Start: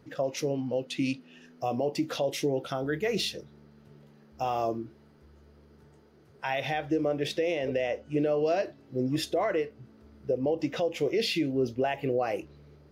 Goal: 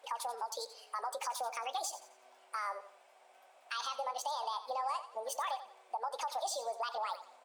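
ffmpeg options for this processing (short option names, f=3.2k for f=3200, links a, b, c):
-af "highpass=f=350:w=0.5412,highpass=f=350:w=1.3066,acompressor=threshold=-41dB:ratio=2,aecho=1:1:152|304|456|608:0.224|0.0806|0.029|0.0104,asetrate=76440,aresample=44100"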